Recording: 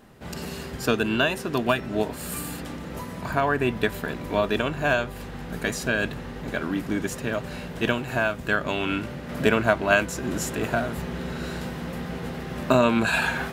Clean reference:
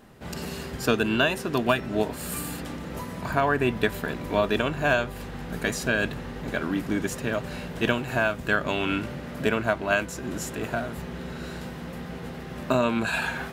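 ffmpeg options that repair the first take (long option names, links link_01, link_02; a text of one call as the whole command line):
ffmpeg -i in.wav -af "asetnsamples=nb_out_samples=441:pad=0,asendcmd='9.29 volume volume -4dB',volume=0dB" out.wav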